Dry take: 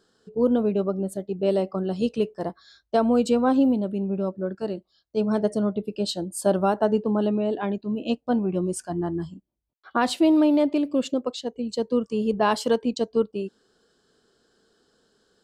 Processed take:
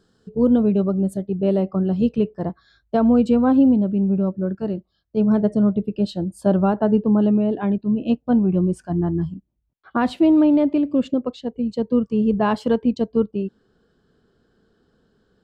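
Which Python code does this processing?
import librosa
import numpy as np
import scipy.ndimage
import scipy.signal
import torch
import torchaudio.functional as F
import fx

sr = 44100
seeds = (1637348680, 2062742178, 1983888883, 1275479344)

y = fx.bass_treble(x, sr, bass_db=12, treble_db=fx.steps((0.0, -2.0), (1.25, -14.0)))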